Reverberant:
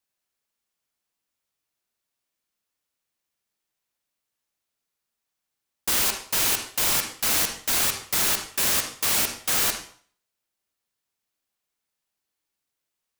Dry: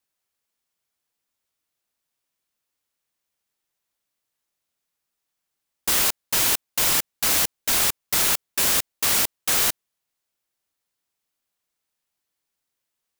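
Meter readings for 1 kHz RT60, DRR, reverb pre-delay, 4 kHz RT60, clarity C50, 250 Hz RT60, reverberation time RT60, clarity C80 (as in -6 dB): 0.50 s, 5.0 dB, 39 ms, 0.45 s, 6.0 dB, 0.45 s, 0.50 s, 10.0 dB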